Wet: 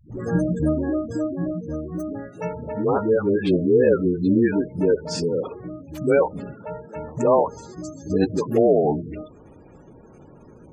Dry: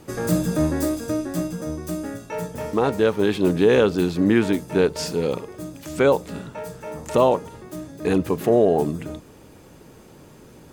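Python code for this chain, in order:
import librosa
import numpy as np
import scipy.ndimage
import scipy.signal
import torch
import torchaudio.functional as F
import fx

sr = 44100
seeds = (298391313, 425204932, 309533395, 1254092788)

y = fx.band_shelf(x, sr, hz=5500.0, db=11.5, octaves=1.2, at=(7.24, 8.32))
y = fx.spec_gate(y, sr, threshold_db=-20, keep='strong')
y = fx.dispersion(y, sr, late='highs', ms=123.0, hz=320.0)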